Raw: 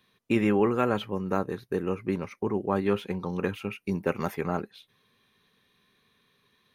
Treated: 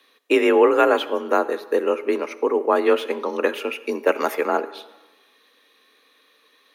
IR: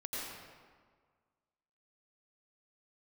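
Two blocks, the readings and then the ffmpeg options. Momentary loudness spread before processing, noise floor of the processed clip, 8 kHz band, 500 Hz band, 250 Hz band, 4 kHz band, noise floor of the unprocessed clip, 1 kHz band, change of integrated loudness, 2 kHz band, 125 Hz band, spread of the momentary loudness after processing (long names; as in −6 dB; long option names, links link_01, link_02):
8 LU, −60 dBFS, can't be measured, +10.5 dB, +2.0 dB, +10.5 dB, −70 dBFS, +10.0 dB, +8.0 dB, +10.5 dB, below −20 dB, 10 LU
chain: -filter_complex "[0:a]highpass=frequency=280:width=0.5412,highpass=frequency=280:width=1.3066,afreqshift=43,asplit=2[link_01][link_02];[1:a]atrim=start_sample=2205,asetrate=66150,aresample=44100[link_03];[link_02][link_03]afir=irnorm=-1:irlink=0,volume=-13dB[link_04];[link_01][link_04]amix=inputs=2:normalize=0,volume=9dB"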